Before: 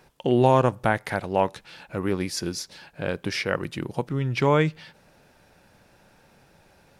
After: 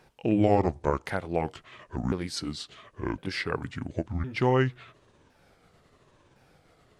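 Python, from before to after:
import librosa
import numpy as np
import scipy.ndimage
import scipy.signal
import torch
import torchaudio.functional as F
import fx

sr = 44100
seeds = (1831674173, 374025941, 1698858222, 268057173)

y = fx.pitch_ramps(x, sr, semitones=-8.5, every_ms=1060)
y = fx.high_shelf(y, sr, hz=10000.0, db=-6.5)
y = F.gain(torch.from_numpy(y), -2.5).numpy()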